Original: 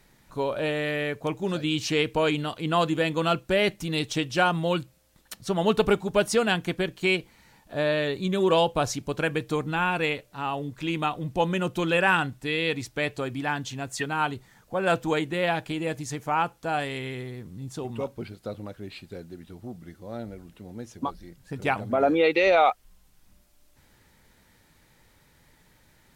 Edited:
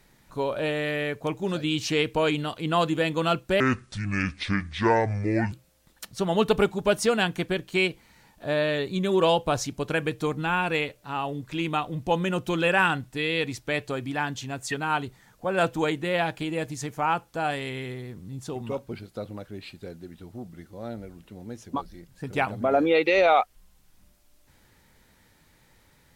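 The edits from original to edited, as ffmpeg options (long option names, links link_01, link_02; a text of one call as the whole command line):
ffmpeg -i in.wav -filter_complex "[0:a]asplit=3[link_01][link_02][link_03];[link_01]atrim=end=3.604[link_04];[link_02]atrim=start=3.6:end=4.81,asetpts=PTS-STARTPTS,asetrate=27783,aresample=44100[link_05];[link_03]atrim=start=4.806[link_06];[link_04][link_05]acrossfade=duration=0.004:curve1=hsin:curve2=hsin[link_07];[link_07][link_06]acrossfade=duration=0.004:curve1=hsin:curve2=hsin" out.wav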